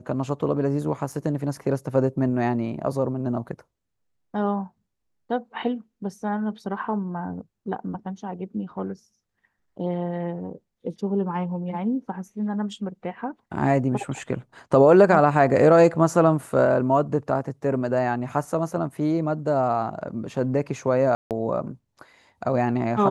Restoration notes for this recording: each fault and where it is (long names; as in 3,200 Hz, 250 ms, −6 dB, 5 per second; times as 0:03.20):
0:01.12: drop-out 4.1 ms
0:21.15–0:21.31: drop-out 158 ms